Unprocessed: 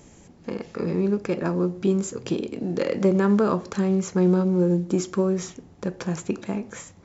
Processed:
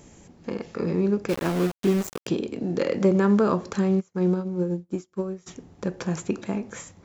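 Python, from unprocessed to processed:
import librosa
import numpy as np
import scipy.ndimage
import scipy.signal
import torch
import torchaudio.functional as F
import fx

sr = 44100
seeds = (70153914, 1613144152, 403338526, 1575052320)

y = fx.sample_gate(x, sr, floor_db=-27.5, at=(1.28, 2.26), fade=0.02)
y = fx.upward_expand(y, sr, threshold_db=-39.0, expansion=2.5, at=(3.99, 5.46), fade=0.02)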